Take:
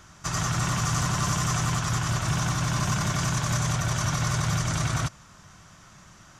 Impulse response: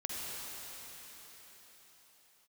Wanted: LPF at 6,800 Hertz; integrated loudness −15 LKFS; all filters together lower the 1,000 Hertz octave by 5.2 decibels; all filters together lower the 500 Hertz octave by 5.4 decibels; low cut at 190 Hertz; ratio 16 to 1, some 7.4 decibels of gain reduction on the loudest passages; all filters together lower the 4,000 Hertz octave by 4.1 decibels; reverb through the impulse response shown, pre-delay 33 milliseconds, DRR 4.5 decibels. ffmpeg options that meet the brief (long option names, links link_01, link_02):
-filter_complex "[0:a]highpass=190,lowpass=6800,equalizer=frequency=500:width_type=o:gain=-5.5,equalizer=frequency=1000:width_type=o:gain=-5,equalizer=frequency=4000:width_type=o:gain=-4.5,acompressor=threshold=-35dB:ratio=16,asplit=2[link_01][link_02];[1:a]atrim=start_sample=2205,adelay=33[link_03];[link_02][link_03]afir=irnorm=-1:irlink=0,volume=-8dB[link_04];[link_01][link_04]amix=inputs=2:normalize=0,volume=22.5dB"